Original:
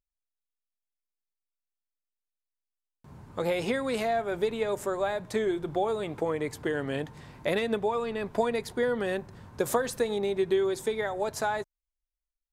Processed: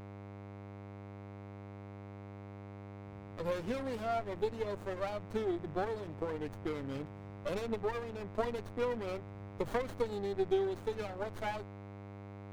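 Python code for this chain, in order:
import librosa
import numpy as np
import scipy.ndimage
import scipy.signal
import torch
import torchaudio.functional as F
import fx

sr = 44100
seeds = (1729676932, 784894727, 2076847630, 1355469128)

y = fx.bin_expand(x, sr, power=1.5)
y = fx.dmg_buzz(y, sr, base_hz=100.0, harmonics=20, level_db=-44.0, tilt_db=-5, odd_only=False)
y = fx.running_max(y, sr, window=17)
y = y * librosa.db_to_amplitude(-4.0)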